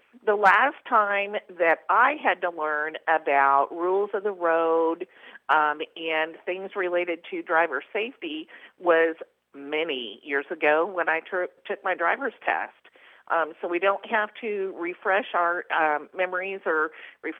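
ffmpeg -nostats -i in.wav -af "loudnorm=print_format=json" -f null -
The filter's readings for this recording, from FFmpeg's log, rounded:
"input_i" : "-25.0",
"input_tp" : "-4.7",
"input_lra" : "3.7",
"input_thresh" : "-35.3",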